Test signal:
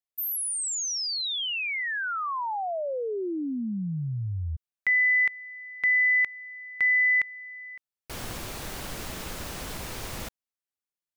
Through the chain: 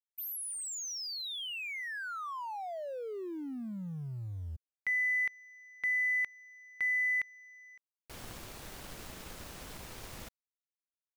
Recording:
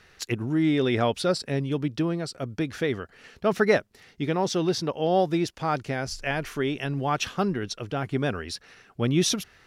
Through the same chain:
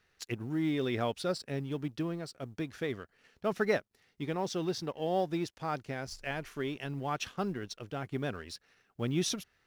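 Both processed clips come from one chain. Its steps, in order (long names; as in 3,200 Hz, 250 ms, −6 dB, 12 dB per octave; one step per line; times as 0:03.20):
mu-law and A-law mismatch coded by A
level −8 dB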